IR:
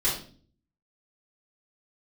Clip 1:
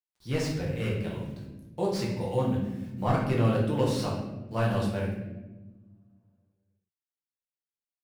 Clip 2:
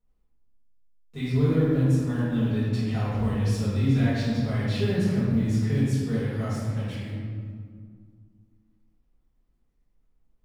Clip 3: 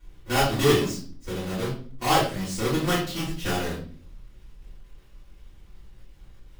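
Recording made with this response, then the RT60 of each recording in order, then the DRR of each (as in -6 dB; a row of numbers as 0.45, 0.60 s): 3; 1.2, 2.1, 0.45 s; -4.5, -13.0, -9.0 dB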